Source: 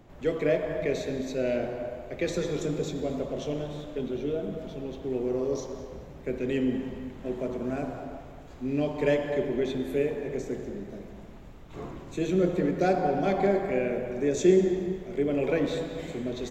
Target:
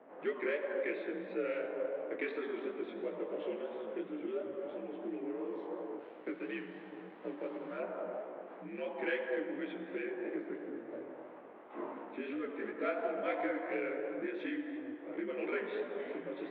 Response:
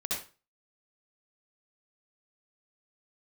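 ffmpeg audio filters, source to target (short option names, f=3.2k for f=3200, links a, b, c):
-filter_complex "[0:a]acrossover=split=1600[a][b];[a]acompressor=threshold=-37dB:ratio=6[c];[c][b]amix=inputs=2:normalize=0,acrossover=split=340 2200:gain=0.112 1 0.251[d][e][f];[d][e][f]amix=inputs=3:normalize=0,adynamicsmooth=sensitivity=6.5:basefreq=2.5k,asettb=1/sr,asplit=3[g][h][i];[g]atrim=end=5.994[j];[h]atrim=start=5.99:end=7.8,asetpts=PTS-STARTPTS,afade=t=in:d=0.004:c=qsin,afade=t=out:st=1.806:d=0.004:c=qsin,aeval=exprs='sgn(val(0))*max(abs(val(0))-0.00119,0)':c=same[k];[i]atrim=start=7.796[l];[j][k]acrossfade=d=0.004:c1=hsin:c2=qsin[m];[m][l]acrossfade=d=0.004:c1=qsin:c2=hsin,highpass=f=340:t=q:w=0.5412,highpass=f=340:t=q:w=1.307,lowpass=f=3.6k:t=q:w=0.5176,lowpass=f=3.6k:t=q:w=0.7071,lowpass=f=3.6k:t=q:w=1.932,afreqshift=-75,flanger=delay=15.5:depth=6:speed=2.9,volume=8dB"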